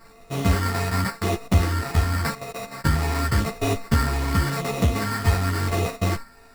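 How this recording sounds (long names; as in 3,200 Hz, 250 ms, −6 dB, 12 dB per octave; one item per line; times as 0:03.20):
a buzz of ramps at a fixed pitch in blocks of 64 samples
phaser sweep stages 6, 0.89 Hz, lowest notch 500–1,400 Hz
aliases and images of a low sample rate 3,200 Hz, jitter 0%
a shimmering, thickened sound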